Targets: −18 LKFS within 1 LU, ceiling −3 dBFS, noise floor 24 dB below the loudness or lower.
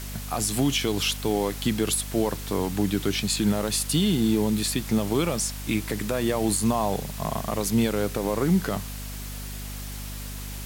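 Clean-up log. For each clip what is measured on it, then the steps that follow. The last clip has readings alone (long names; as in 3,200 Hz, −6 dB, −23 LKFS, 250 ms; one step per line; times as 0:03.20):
mains hum 50 Hz; hum harmonics up to 250 Hz; level of the hum −34 dBFS; background noise floor −35 dBFS; target noise floor −50 dBFS; integrated loudness −25.5 LKFS; sample peak −12.0 dBFS; target loudness −18.0 LKFS
→ hum removal 50 Hz, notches 5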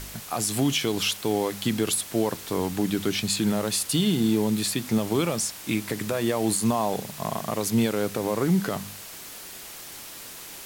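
mains hum none found; background noise floor −41 dBFS; target noise floor −50 dBFS
→ broadband denoise 9 dB, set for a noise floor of −41 dBFS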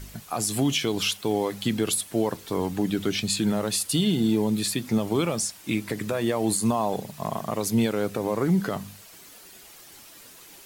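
background noise floor −48 dBFS; target noise floor −50 dBFS
→ broadband denoise 6 dB, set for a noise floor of −48 dBFS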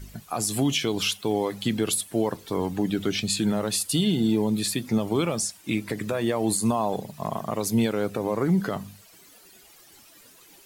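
background noise floor −53 dBFS; integrated loudness −26.0 LKFS; sample peak −12.5 dBFS; target loudness −18.0 LKFS
→ level +8 dB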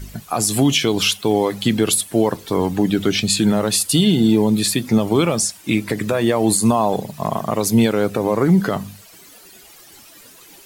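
integrated loudness −18.0 LKFS; sample peak −4.5 dBFS; background noise floor −45 dBFS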